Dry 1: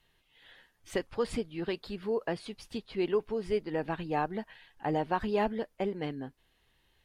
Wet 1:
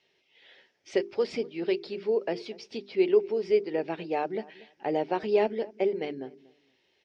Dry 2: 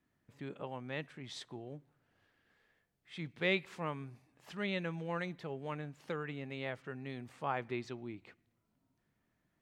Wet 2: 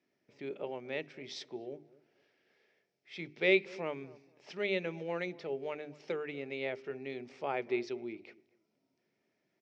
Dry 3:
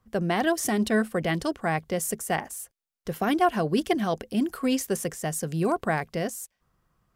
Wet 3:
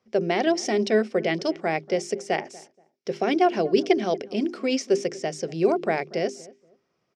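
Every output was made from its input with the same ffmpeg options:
-filter_complex "[0:a]highpass=200,equalizer=f=390:t=q:w=4:g=10,equalizer=f=590:t=q:w=4:g=5,equalizer=f=1.1k:t=q:w=4:g=-7,equalizer=f=1.6k:t=q:w=4:g=-4,equalizer=f=2.3k:t=q:w=4:g=7,equalizer=f=5.4k:t=q:w=4:g=10,lowpass=f=6k:w=0.5412,lowpass=f=6k:w=1.3066,bandreject=f=50:t=h:w=6,bandreject=f=100:t=h:w=6,bandreject=f=150:t=h:w=6,bandreject=f=200:t=h:w=6,bandreject=f=250:t=h:w=6,bandreject=f=300:t=h:w=6,bandreject=f=350:t=h:w=6,bandreject=f=400:t=h:w=6,asplit=2[a][b];[b]adelay=238,lowpass=f=1.1k:p=1,volume=-20dB,asplit=2[c][d];[d]adelay=238,lowpass=f=1.1k:p=1,volume=0.25[e];[a][c][e]amix=inputs=3:normalize=0"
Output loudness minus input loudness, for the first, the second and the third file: +4.5, +3.5, +2.0 LU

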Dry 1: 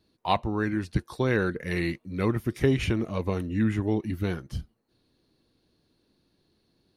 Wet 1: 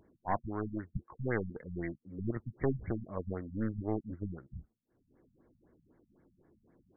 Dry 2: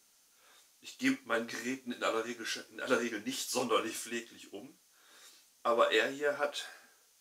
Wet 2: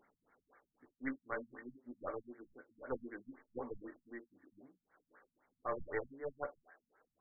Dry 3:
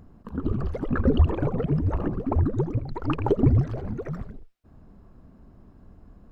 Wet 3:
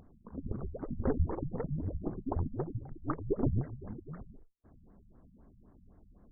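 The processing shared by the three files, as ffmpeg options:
-af "bass=f=250:g=-4,treble=f=4k:g=-5,aeval=exprs='0.316*(cos(1*acos(clip(val(0)/0.316,-1,1)))-cos(1*PI/2))+0.00447*(cos(2*acos(clip(val(0)/0.316,-1,1)))-cos(2*PI/2))+0.00282*(cos(4*acos(clip(val(0)/0.316,-1,1)))-cos(4*PI/2))+0.0708*(cos(6*acos(clip(val(0)/0.316,-1,1)))-cos(6*PI/2))+0.0251*(cos(8*acos(clip(val(0)/0.316,-1,1)))-cos(8*PI/2))':c=same,acompressor=mode=upward:threshold=-43dB:ratio=2.5,afftfilt=real='re*lt(b*sr/1024,210*pow(2300/210,0.5+0.5*sin(2*PI*3.9*pts/sr)))':imag='im*lt(b*sr/1024,210*pow(2300/210,0.5+0.5*sin(2*PI*3.9*pts/sr)))':win_size=1024:overlap=0.75,volume=-8.5dB"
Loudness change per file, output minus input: -10.0, -12.0, -11.0 LU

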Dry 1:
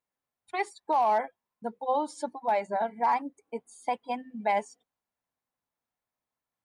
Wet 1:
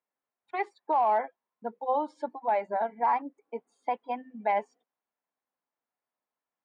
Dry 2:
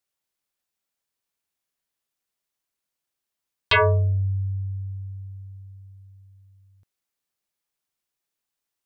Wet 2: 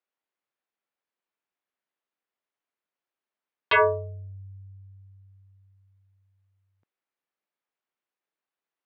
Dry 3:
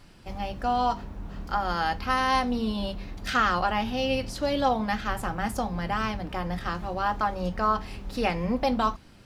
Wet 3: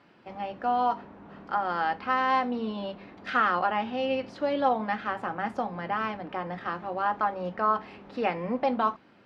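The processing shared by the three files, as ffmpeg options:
-af "highpass=250,lowpass=2.3k"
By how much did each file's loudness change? 0.0, -0.5, -1.0 LU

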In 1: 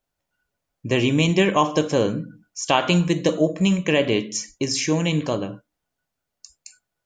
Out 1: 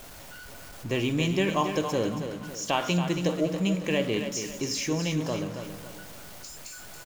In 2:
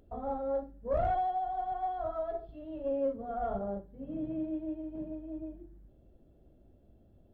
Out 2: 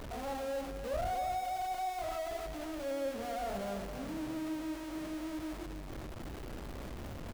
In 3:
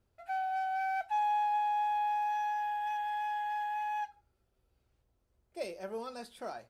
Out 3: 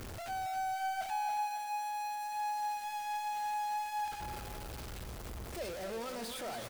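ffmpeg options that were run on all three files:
-af "aeval=exprs='val(0)+0.5*0.0335*sgn(val(0))':c=same,aecho=1:1:277|554|831|1108:0.376|0.15|0.0601|0.0241,volume=-8.5dB"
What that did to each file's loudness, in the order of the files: -7.0, -3.5, -4.0 LU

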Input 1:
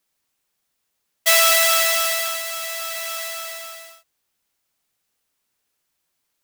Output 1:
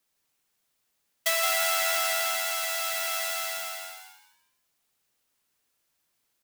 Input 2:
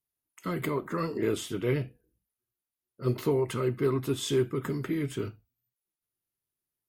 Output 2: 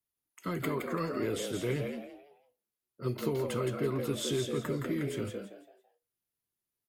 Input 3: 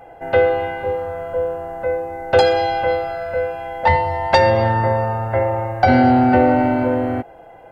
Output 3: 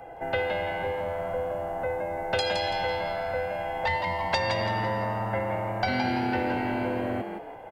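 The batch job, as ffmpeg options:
-filter_complex "[0:a]acrossover=split=120|2000[a][b][c];[a]acompressor=threshold=-39dB:ratio=4[d];[b]acompressor=threshold=-28dB:ratio=4[e];[c]acompressor=threshold=-26dB:ratio=4[f];[d][e][f]amix=inputs=3:normalize=0,asplit=5[g][h][i][j][k];[h]adelay=167,afreqshift=93,volume=-5.5dB[l];[i]adelay=334,afreqshift=186,volume=-15.7dB[m];[j]adelay=501,afreqshift=279,volume=-25.8dB[n];[k]adelay=668,afreqshift=372,volume=-36dB[o];[g][l][m][n][o]amix=inputs=5:normalize=0,volume=-2dB"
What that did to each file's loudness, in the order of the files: -8.5, -3.5, -11.0 LU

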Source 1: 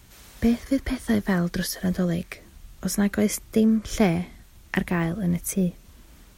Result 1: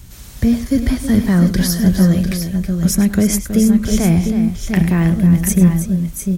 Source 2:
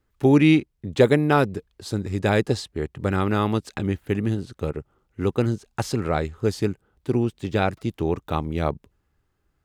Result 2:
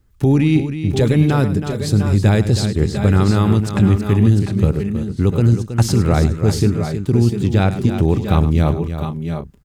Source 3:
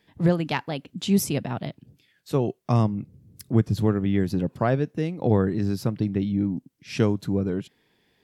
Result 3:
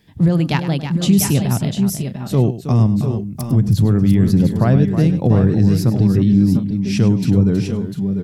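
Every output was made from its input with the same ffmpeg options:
-filter_complex "[0:a]bass=f=250:g=11,treble=f=4k:g=6,alimiter=limit=-10.5dB:level=0:latency=1:release=23,asplit=2[a][b];[b]aecho=0:1:102|321|696|701|732:0.211|0.316|0.224|0.355|0.126[c];[a][c]amix=inputs=2:normalize=0,volume=4dB"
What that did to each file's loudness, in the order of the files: +10.0, +7.0, +9.5 LU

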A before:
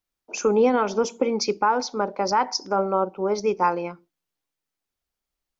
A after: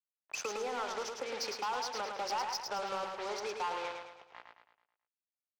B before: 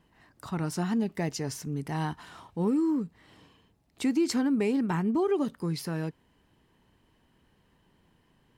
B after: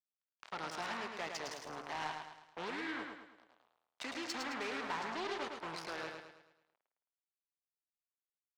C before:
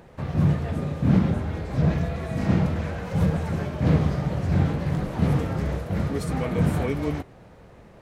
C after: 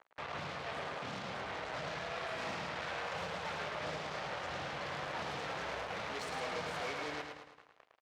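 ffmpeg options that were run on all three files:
-filter_complex "[0:a]aeval=exprs='val(0)+0.01*(sin(2*PI*60*n/s)+sin(2*PI*2*60*n/s)/2+sin(2*PI*3*60*n/s)/3+sin(2*PI*4*60*n/s)/4+sin(2*PI*5*60*n/s)/5)':c=same,asplit=2[a][b];[b]aecho=0:1:723:0.0794[c];[a][c]amix=inputs=2:normalize=0,acrusher=bits=4:mix=0:aa=0.5,lowshelf=f=86:g=-8,acompressor=threshold=-25dB:ratio=3,acrossover=split=540 6800:gain=0.0891 1 0.1[d][e][f];[d][e][f]amix=inputs=3:normalize=0,asoftclip=type=tanh:threshold=-28dB,asplit=2[g][h];[h]aecho=0:1:108|216|324|432|540|648:0.562|0.253|0.114|0.0512|0.0231|0.0104[i];[g][i]amix=inputs=2:normalize=0,volume=-3dB"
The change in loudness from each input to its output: -14.0, -12.0, -15.0 LU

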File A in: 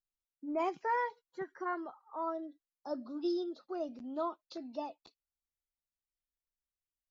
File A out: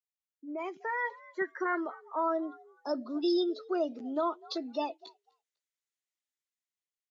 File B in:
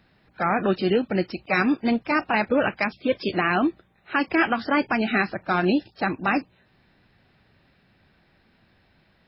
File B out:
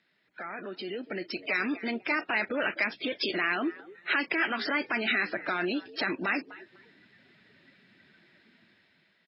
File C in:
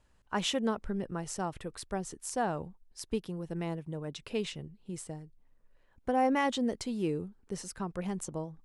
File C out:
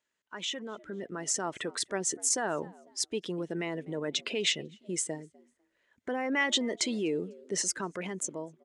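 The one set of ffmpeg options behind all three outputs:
-filter_complex "[0:a]acompressor=threshold=-30dB:ratio=16,equalizer=f=780:t=o:w=0.23:g=-5.5,asplit=3[a][b][c];[b]adelay=249,afreqshift=86,volume=-23dB[d];[c]adelay=498,afreqshift=172,volume=-32.9dB[e];[a][d][e]amix=inputs=3:normalize=0,alimiter=level_in=6.5dB:limit=-24dB:level=0:latency=1:release=13,volume=-6.5dB,dynaudnorm=f=180:g=13:m=9.5dB,afftdn=nr=12:nf=-45,highpass=370,equalizer=f=520:t=q:w=4:g=-5,equalizer=f=790:t=q:w=4:g=-4,equalizer=f=1.1k:t=q:w=4:g=-5,equalizer=f=2k:t=q:w=4:g=6,equalizer=f=3.4k:t=q:w=4:g=4,equalizer=f=6.7k:t=q:w=4:g=6,lowpass=f=9.7k:w=0.5412,lowpass=f=9.7k:w=1.3066,volume=3dB"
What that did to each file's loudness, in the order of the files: +4.5, -6.5, +2.5 LU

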